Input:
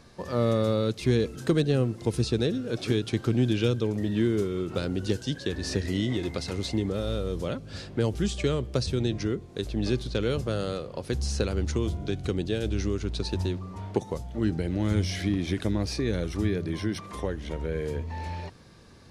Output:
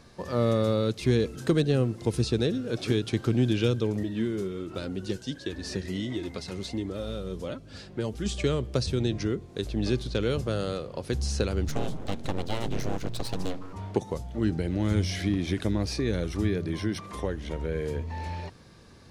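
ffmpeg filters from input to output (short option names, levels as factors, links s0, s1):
-filter_complex "[0:a]asettb=1/sr,asplit=3[s0][s1][s2];[s0]atrim=end=4.034[s3];[s1]atrim=start=4.03:end=8.26,asetpts=PTS-STARTPTS,afade=t=in:d=0.004:c=qsin,afade=t=out:st=4.226:d=0.004:c=qsin,flanger=delay=3:depth=2.6:regen=49:speed=1.4:shape=sinusoidal[s4];[s2]atrim=start=8.256[s5];[s3][s4]acrossfade=d=0.004:c1=hsin:c2=qsin[s6];[s6][s5]acrossfade=d=0.004:c1=qsin:c2=hsin,asettb=1/sr,asplit=3[s7][s8][s9];[s7]atrim=end=11.684[s10];[s8]atrim=start=11.68:end=13.73,asetpts=PTS-STARTPTS,afade=t=in:d=0.004:c=qsin,afade=t=out:st=2.046:d=0.004:c=qsin,aeval=exprs='abs(val(0))':c=same[s11];[s9]atrim=start=13.726[s12];[s10][s11]acrossfade=d=0.004:c1=hsin:c2=qsin[s13];[s13][s12]acrossfade=d=0.004:c1=qsin:c2=hsin"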